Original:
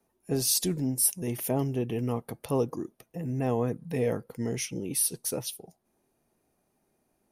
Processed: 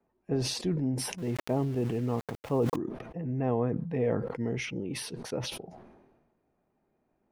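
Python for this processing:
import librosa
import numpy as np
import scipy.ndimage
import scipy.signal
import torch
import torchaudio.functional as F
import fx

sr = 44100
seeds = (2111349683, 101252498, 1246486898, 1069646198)

y = scipy.signal.sosfilt(scipy.signal.butter(2, 2000.0, 'lowpass', fs=sr, output='sos'), x)
y = fx.sample_gate(y, sr, floor_db=-44.5, at=(1.18, 2.76))
y = fx.sustainer(y, sr, db_per_s=44.0)
y = y * 10.0 ** (-1.0 / 20.0)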